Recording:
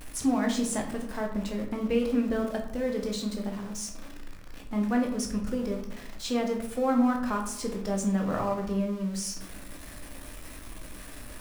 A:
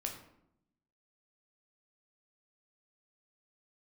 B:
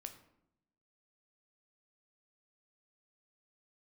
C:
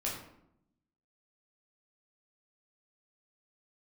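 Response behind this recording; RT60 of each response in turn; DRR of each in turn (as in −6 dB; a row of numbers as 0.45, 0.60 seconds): A; 0.75, 0.80, 0.75 seconds; 1.5, 6.0, −5.0 decibels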